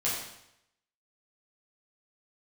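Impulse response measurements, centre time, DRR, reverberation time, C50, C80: 55 ms, -8.5 dB, 0.80 s, 2.0 dB, 4.5 dB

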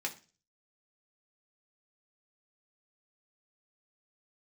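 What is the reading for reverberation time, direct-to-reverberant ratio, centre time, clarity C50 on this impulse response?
0.35 s, 0.5 dB, 9 ms, 15.0 dB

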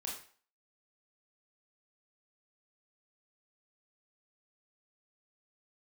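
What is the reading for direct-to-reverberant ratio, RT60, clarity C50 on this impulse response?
-3.0 dB, 0.45 s, 4.5 dB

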